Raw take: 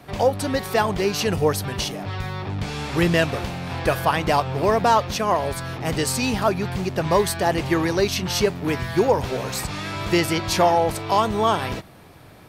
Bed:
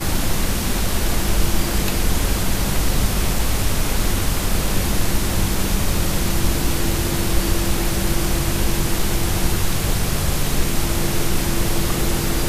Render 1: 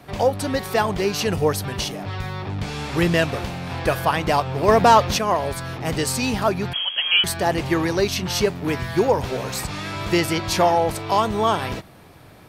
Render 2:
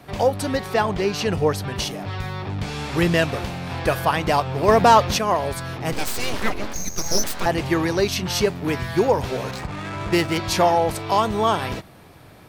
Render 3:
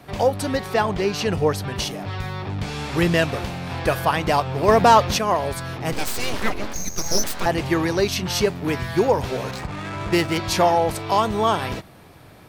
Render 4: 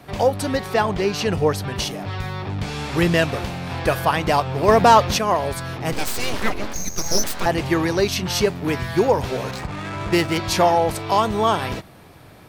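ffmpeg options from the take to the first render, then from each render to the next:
-filter_complex "[0:a]asettb=1/sr,asplit=3[a][b][c];[a]atrim=end=4.684[d];[b]atrim=start=4.68:end=5.19,asetpts=PTS-STARTPTS,afade=t=in:d=0.004:c=qsin,afade=t=out:st=0.506:d=0.004:c=qsin,acontrast=24[e];[c]atrim=start=5.186[f];[d][e]acrossfade=d=0.004:c1=hsin:c2=qsin[g];[g][f]acrossfade=d=0.004:c1=qsin:c2=hsin,asettb=1/sr,asplit=3[h][i][j];[h]atrim=end=6.734[k];[i]atrim=start=6.73:end=7.24,asetpts=PTS-STARTPTS,afade=t=in:d=0.004:c=qsin,afade=t=out:st=0.506:d=0.004:c=qsin,lowpass=f=2.9k:t=q:w=0.5098,lowpass=f=2.9k:t=q:w=0.6013,lowpass=f=2.9k:t=q:w=0.9,lowpass=f=2.9k:t=q:w=2.563,afreqshift=-3400[l];[j]atrim=start=7.236[m];[k][l]acrossfade=d=0.004:c1=hsin:c2=qsin[n];[n][m]acrossfade=d=0.004:c1=qsin:c2=hsin"
-filter_complex "[0:a]asettb=1/sr,asplit=3[a][b][c];[a]atrim=end=0.574[d];[b]atrim=start=0.57:end=1.76,asetpts=PTS-STARTPTS,afade=t=in:d=0.004:c=qsin,afade=t=out:st=1.186:d=0.004:c=qsin,highshelf=f=8.1k:g=-11[e];[c]atrim=start=1.756[f];[d][e]acrossfade=d=0.004:c1=hsin:c2=qsin[g];[g][f]acrossfade=d=0.004:c1=qsin:c2=hsin,asettb=1/sr,asplit=3[h][i][j];[h]atrim=end=5.924[k];[i]atrim=start=5.92:end=7.46,asetpts=PTS-STARTPTS,afade=t=in:d=0.004:c=qsin,afade=t=out:st=1.536:d=0.004:c=qsin,aeval=exprs='abs(val(0))':c=same[l];[j]atrim=start=7.456[m];[k][l]acrossfade=d=0.004:c1=hsin:c2=qsin[n];[n][m]acrossfade=d=0.004:c1=qsin:c2=hsin,asettb=1/sr,asplit=3[o][p][q];[o]atrim=end=9.514[r];[p]atrim=start=9.51:end=10.38,asetpts=PTS-STARTPTS,afade=t=in:d=0.004:c=qsin,afade=t=out:st=0.866:d=0.004:c=qsin,adynamicsmooth=sensitivity=4:basefreq=740[s];[q]atrim=start=10.376[t];[r][s]acrossfade=d=0.004:c1=hsin:c2=qsin[u];[u][t]acrossfade=d=0.004:c1=qsin:c2=hsin"
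-af anull
-af "volume=1dB"

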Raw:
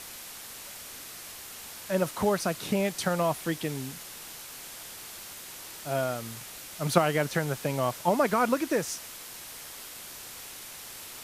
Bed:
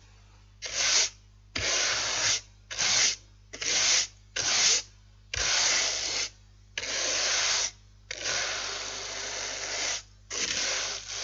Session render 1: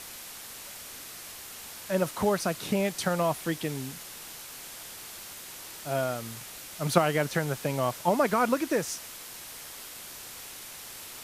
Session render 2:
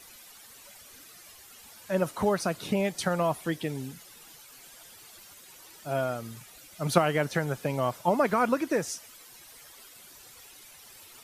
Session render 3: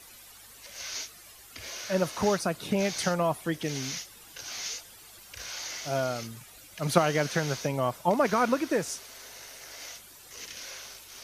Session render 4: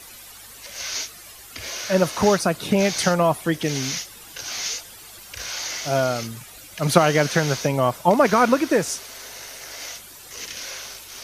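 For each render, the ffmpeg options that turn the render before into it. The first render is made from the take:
-af anull
-af "afftdn=nr=12:nf=-44"
-filter_complex "[1:a]volume=-13dB[a];[0:a][a]amix=inputs=2:normalize=0"
-af "volume=8dB,alimiter=limit=-2dB:level=0:latency=1"

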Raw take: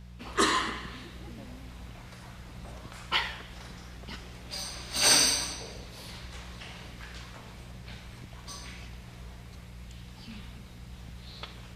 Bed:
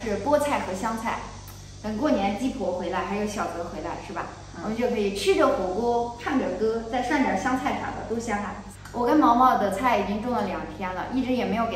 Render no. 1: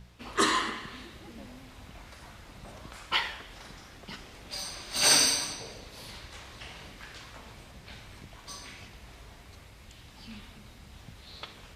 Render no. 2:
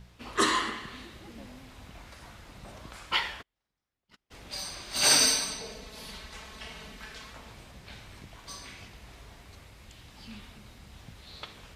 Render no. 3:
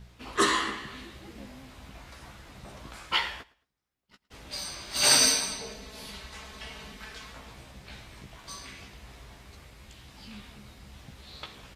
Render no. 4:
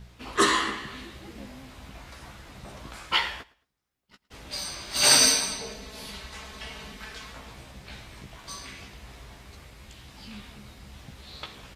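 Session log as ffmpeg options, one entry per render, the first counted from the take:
-af "bandreject=f=60:t=h:w=4,bandreject=f=120:t=h:w=4,bandreject=f=180:t=h:w=4,bandreject=f=240:t=h:w=4,bandreject=f=300:t=h:w=4,bandreject=f=360:t=h:w=4,bandreject=f=420:t=h:w=4,bandreject=f=480:t=h:w=4"
-filter_complex "[0:a]asplit=3[a][b][c];[a]afade=t=out:st=3.41:d=0.02[d];[b]agate=range=-40dB:threshold=-39dB:ratio=16:release=100:detection=peak,afade=t=in:st=3.41:d=0.02,afade=t=out:st=4.3:d=0.02[e];[c]afade=t=in:st=4.3:d=0.02[f];[d][e][f]amix=inputs=3:normalize=0,asettb=1/sr,asplit=3[g][h][i];[g]atrim=end=5.214[j];[h]atrim=start=5.21:end=7.33,asetpts=PTS-STARTPTS,afade=t=in:d=0.004:c=qsin,afade=t=out:st=2.116:d=0.004:c=qsin,aecho=1:1:4.6:0.65,atrim=end_sample=93492[k];[i]atrim=start=7.326[l];[j][k]acrossfade=d=0.004:c1=hsin:c2=qsin[m];[m][l]acrossfade=d=0.004:c1=qsin:c2=hsin"
-filter_complex "[0:a]asplit=2[a][b];[b]adelay=15,volume=-6.5dB[c];[a][c]amix=inputs=2:normalize=0,aecho=1:1:110|220:0.0841|0.0244"
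-af "volume=2.5dB"

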